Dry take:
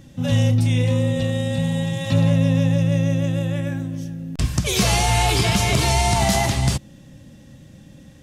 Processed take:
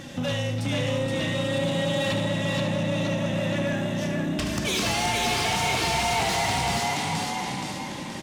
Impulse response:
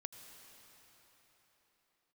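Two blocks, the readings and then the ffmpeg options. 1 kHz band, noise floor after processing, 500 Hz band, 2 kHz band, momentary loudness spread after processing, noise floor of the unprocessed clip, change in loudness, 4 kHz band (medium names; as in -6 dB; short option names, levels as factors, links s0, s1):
-1.5 dB, -34 dBFS, -1.5 dB, 0.0 dB, 5 LU, -46 dBFS, -5.5 dB, -1.5 dB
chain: -filter_complex "[0:a]acompressor=threshold=0.0355:ratio=6,asplit=2[s0][s1];[s1]asplit=6[s2][s3][s4][s5][s6][s7];[s2]adelay=474,afreqshift=32,volume=0.708[s8];[s3]adelay=948,afreqshift=64,volume=0.331[s9];[s4]adelay=1422,afreqshift=96,volume=0.157[s10];[s5]adelay=1896,afreqshift=128,volume=0.0733[s11];[s6]adelay=2370,afreqshift=160,volume=0.0347[s12];[s7]adelay=2844,afreqshift=192,volume=0.0162[s13];[s8][s9][s10][s11][s12][s13]amix=inputs=6:normalize=0[s14];[s0][s14]amix=inputs=2:normalize=0,asplit=2[s15][s16];[s16]highpass=f=720:p=1,volume=11.2,asoftclip=type=tanh:threshold=0.15[s17];[s15][s17]amix=inputs=2:normalize=0,lowpass=f=3800:p=1,volume=0.501,asplit=2[s18][s19];[s19]aecho=0:1:74:0.355[s20];[s18][s20]amix=inputs=2:normalize=0"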